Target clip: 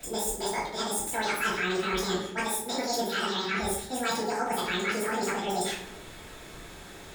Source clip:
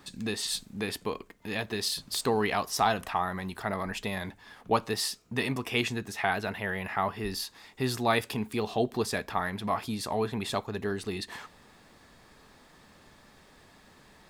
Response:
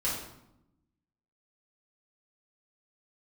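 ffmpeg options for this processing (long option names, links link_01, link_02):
-filter_complex "[0:a]areverse,acompressor=threshold=-37dB:ratio=6,areverse[link_01];[1:a]atrim=start_sample=2205,asetrate=29106,aresample=44100[link_02];[link_01][link_02]afir=irnorm=-1:irlink=0,asetrate=88200,aresample=44100"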